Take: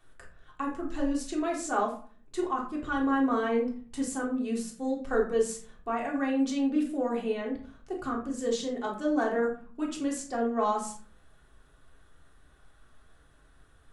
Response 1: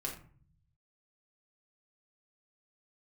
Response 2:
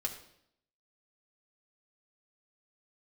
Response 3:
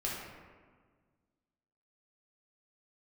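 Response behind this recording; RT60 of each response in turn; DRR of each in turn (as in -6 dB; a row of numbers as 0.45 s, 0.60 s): 1; 0.45 s, 0.70 s, 1.6 s; -2.5 dB, -1.0 dB, -5.5 dB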